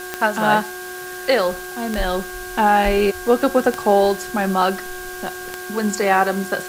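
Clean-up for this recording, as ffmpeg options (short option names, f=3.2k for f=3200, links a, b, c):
-af "adeclick=t=4,bandreject=f=365:t=h:w=4,bandreject=f=730:t=h:w=4,bandreject=f=1.095k:t=h:w=4,bandreject=f=1.46k:t=h:w=4,bandreject=f=1.6k:w=30,afwtdn=0.014"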